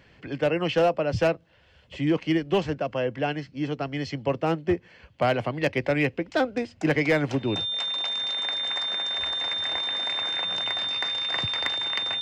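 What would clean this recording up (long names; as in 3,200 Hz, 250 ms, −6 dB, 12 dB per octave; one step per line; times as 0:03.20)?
clipped peaks rebuilt −15 dBFS
notch filter 3,600 Hz, Q 30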